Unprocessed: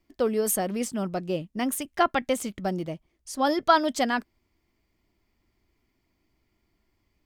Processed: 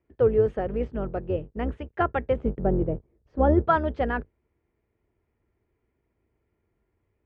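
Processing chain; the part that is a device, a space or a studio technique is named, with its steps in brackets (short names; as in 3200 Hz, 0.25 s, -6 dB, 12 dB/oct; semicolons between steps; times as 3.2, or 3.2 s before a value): 2.36–3.68 tilt shelf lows +9 dB; sub-octave bass pedal (octaver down 2 oct, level +2 dB; speaker cabinet 63–2200 Hz, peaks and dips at 180 Hz -7 dB, 280 Hz -6 dB, 450 Hz +7 dB, 710 Hz -3 dB, 1100 Hz -5 dB, 2100 Hz -6 dB)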